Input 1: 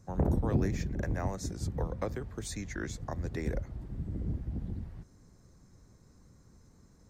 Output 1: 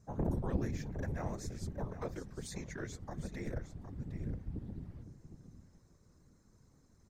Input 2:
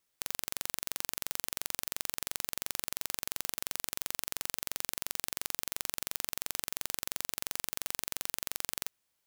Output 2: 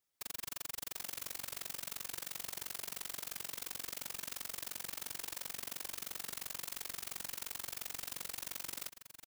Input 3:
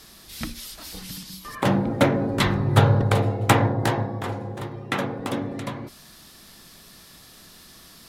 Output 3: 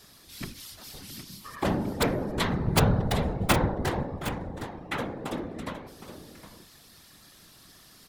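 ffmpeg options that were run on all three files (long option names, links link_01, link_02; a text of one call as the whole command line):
ffmpeg -i in.wav -af "aeval=exprs='(mod(1.88*val(0)+1,2)-1)/1.88':channel_layout=same,aecho=1:1:763:0.266,afftfilt=real='hypot(re,im)*cos(2*PI*random(0))':imag='hypot(re,im)*sin(2*PI*random(1))':win_size=512:overlap=0.75" out.wav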